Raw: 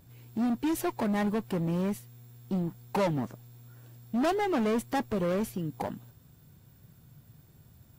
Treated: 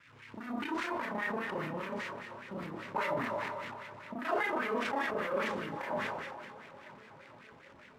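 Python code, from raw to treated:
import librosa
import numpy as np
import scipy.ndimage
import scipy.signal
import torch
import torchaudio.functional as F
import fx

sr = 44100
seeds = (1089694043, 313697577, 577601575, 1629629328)

p1 = fx.local_reverse(x, sr, ms=31.0)
p2 = p1 + fx.echo_thinned(p1, sr, ms=255, feedback_pct=74, hz=410.0, wet_db=-14.5, dry=0)
p3 = fx.rev_schroeder(p2, sr, rt60_s=0.32, comb_ms=25, drr_db=-2.0)
p4 = fx.over_compress(p3, sr, threshold_db=-34.0, ratio=-1.0)
p5 = p3 + F.gain(torch.from_numpy(p4), 0.0).numpy()
p6 = fx.sample_hold(p5, sr, seeds[0], rate_hz=13000.0, jitter_pct=20)
p7 = fx.peak_eq(p6, sr, hz=760.0, db=-12.5, octaves=0.25)
p8 = fx.wah_lfo(p7, sr, hz=5.0, low_hz=750.0, high_hz=2100.0, q=2.4)
p9 = fx.low_shelf(p8, sr, hz=74.0, db=9.5)
p10 = fx.echo_filtered(p9, sr, ms=464, feedback_pct=82, hz=1300.0, wet_db=-19)
y = fx.sustainer(p10, sr, db_per_s=31.0)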